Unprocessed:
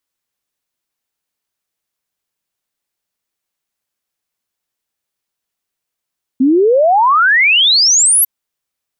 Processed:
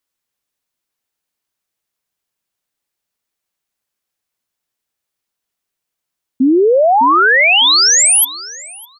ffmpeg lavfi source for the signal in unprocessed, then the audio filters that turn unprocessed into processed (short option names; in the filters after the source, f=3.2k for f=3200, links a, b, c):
-f lavfi -i "aevalsrc='0.447*clip(min(t,1.85-t)/0.01,0,1)*sin(2*PI*250*1.85/log(12000/250)*(exp(log(12000/250)*t/1.85)-1))':d=1.85:s=44100"
-filter_complex "[0:a]asplit=2[a][b];[b]adelay=606,lowpass=f=2k:p=1,volume=-10dB,asplit=2[c][d];[d]adelay=606,lowpass=f=2k:p=1,volume=0.21,asplit=2[e][f];[f]adelay=606,lowpass=f=2k:p=1,volume=0.21[g];[a][c][e][g]amix=inputs=4:normalize=0"